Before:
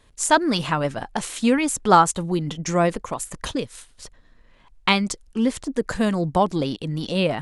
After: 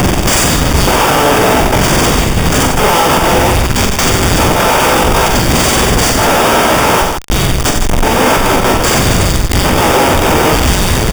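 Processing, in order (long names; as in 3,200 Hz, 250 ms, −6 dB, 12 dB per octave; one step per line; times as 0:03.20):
compressor on every frequency bin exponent 0.2
high-pass filter 150 Hz 24 dB per octave
parametric band 440 Hz −8.5 dB 0.65 octaves
automatic gain control
time stretch by overlap-add 1.5×, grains 95 ms
auto-filter high-pass square 0.57 Hz 430–5,000 Hz
bit reduction 6 bits
comparator with hysteresis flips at −21.5 dBFS
Butterworth band-reject 4,100 Hz, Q 6.8
loudspeakers that aren't time-aligned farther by 15 metres −5 dB, 31 metres −7 dB, 54 metres −7 dB
boost into a limiter +12 dB
level −1 dB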